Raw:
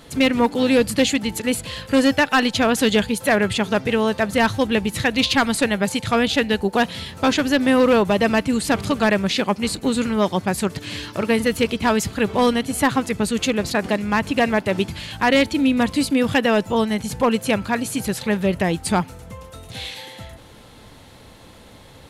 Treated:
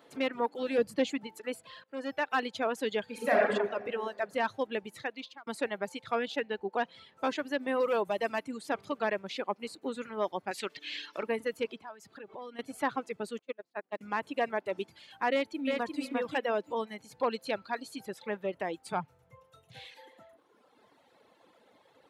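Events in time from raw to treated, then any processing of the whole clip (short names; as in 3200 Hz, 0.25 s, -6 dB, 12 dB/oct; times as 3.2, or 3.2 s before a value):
0.78–1.27 low shelf 360 Hz +7.5 dB
1.84–2.31 fade in, from -19 dB
3.03–3.48 reverb throw, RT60 2.1 s, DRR -5.5 dB
4.9–5.47 fade out
6.42–7.19 air absorption 52 m
7.8–8.48 high shelf 6800 Hz +9 dB
10.51–11.23 weighting filter D
11.76–12.59 compressor 8:1, threshold -27 dBFS
13.39–14.01 gate -18 dBFS, range -28 dB
15.32–16.02 echo throw 0.35 s, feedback 25%, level -2.5 dB
17.17–18.02 bell 4200 Hz +12 dB 0.34 oct
18.92–19.92 resonant low shelf 180 Hz +8 dB, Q 3
whole clip: reverb removal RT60 1.9 s; HPF 390 Hz 12 dB/oct; bell 11000 Hz -14.5 dB 2.9 oct; gain -8.5 dB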